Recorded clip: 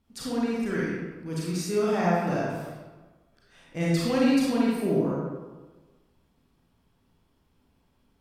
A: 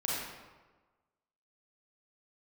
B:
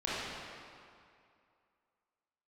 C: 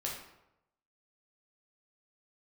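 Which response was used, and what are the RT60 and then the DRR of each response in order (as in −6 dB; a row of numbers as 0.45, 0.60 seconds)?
A; 1.3, 2.4, 0.90 seconds; −6.0, −9.5, −3.0 decibels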